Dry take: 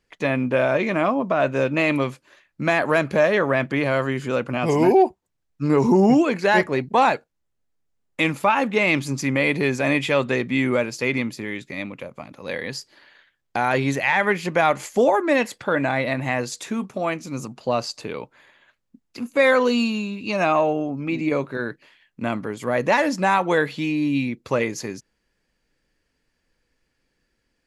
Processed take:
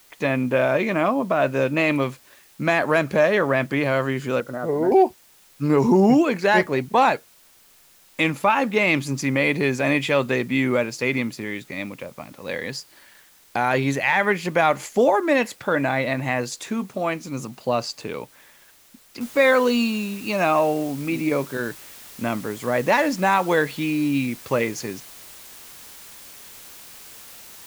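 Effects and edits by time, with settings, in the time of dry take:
4.4–4.92 rippled Chebyshev low-pass 2000 Hz, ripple 9 dB
19.21 noise floor step -54 dB -43 dB

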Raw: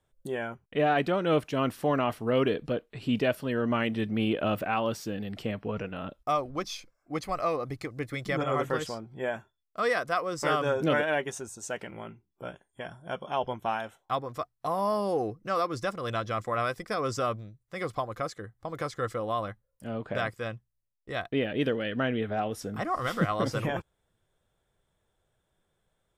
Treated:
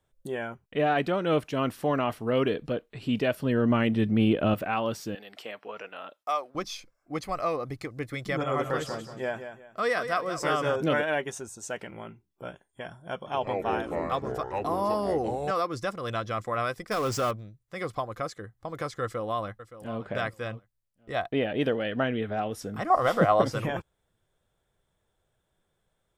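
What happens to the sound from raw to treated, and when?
3.4–4.54 low shelf 380 Hz +7.5 dB
5.15–6.55 HPF 610 Hz
8.39–10.76 feedback echo 0.182 s, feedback 29%, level -9.5 dB
13.16–15.51 echoes that change speed 0.1 s, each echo -5 st, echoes 3
16.91–17.31 zero-crossing step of -33 dBFS
19.02–20.02 echo throw 0.57 s, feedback 20%, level -14 dB
21.14–22.04 bell 740 Hz +7 dB
22.9–23.42 bell 660 Hz +12.5 dB 1.3 oct

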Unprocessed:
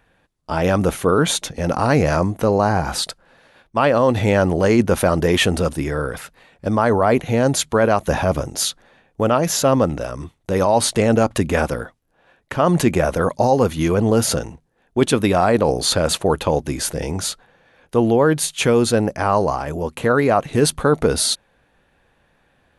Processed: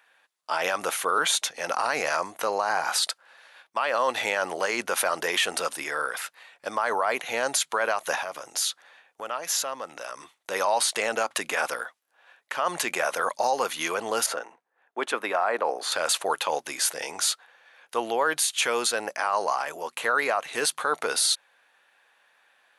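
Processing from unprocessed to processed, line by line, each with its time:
8.15–10.17 compressor 2.5:1, threshold -27 dBFS
14.26–15.92 three-band isolator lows -19 dB, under 190 Hz, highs -15 dB, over 2100 Hz
whole clip: HPF 1000 Hz 12 dB/oct; limiter -15.5 dBFS; gain +2 dB

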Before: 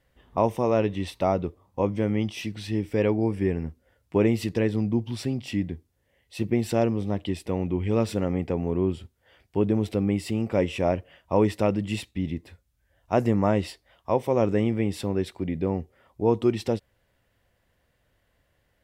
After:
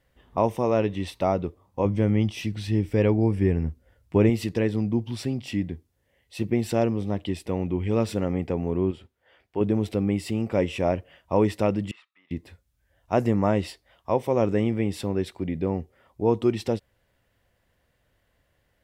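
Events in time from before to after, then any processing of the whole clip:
1.85–4.3 low shelf 120 Hz +11 dB
8.91–9.61 tone controls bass -9 dB, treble -9 dB
11.91–12.31 ladder band-pass 1300 Hz, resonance 80%

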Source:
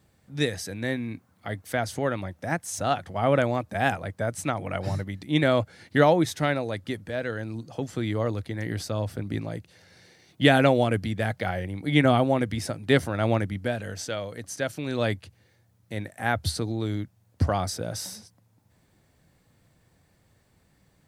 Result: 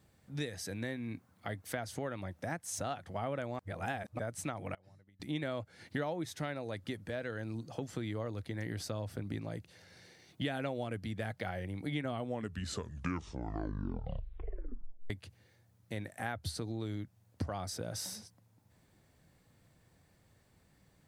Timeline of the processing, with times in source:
3.59–4.19 reverse
4.74–5.2 flipped gate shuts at -24 dBFS, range -29 dB
12.06 tape stop 3.04 s
whole clip: compressor 4:1, threshold -32 dBFS; gain -3.5 dB

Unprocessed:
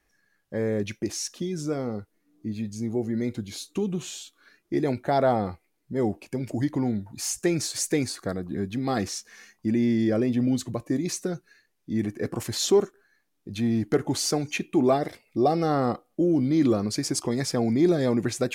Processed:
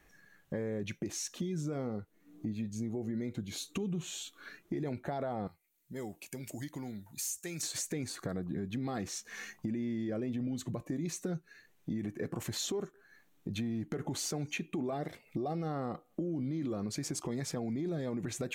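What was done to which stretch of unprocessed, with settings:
5.47–7.63 pre-emphasis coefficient 0.9
whole clip: thirty-one-band EQ 160 Hz +7 dB, 5000 Hz -8 dB, 10000 Hz -6 dB; limiter -20.5 dBFS; compressor 3:1, threshold -46 dBFS; gain +7 dB

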